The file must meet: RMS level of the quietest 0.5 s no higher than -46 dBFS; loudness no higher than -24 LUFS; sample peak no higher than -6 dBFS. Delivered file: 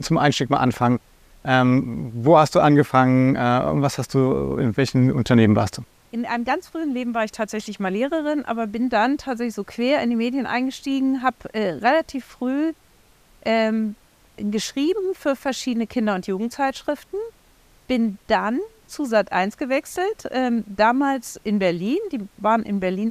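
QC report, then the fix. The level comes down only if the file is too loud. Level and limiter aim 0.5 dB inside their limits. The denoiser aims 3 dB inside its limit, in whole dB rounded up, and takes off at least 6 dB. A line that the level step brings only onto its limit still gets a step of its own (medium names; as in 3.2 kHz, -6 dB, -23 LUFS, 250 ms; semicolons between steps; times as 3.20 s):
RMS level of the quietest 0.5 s -55 dBFS: pass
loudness -21.5 LUFS: fail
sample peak -3.0 dBFS: fail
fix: trim -3 dB; peak limiter -6.5 dBFS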